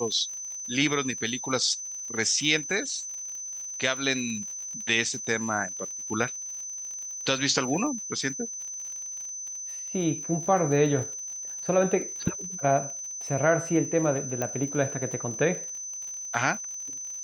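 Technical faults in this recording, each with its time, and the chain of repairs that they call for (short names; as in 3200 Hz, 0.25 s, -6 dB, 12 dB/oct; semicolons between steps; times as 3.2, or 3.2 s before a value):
crackle 53/s -36 dBFS
tone 6100 Hz -34 dBFS
14.42 pop -15 dBFS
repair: de-click; notch 6100 Hz, Q 30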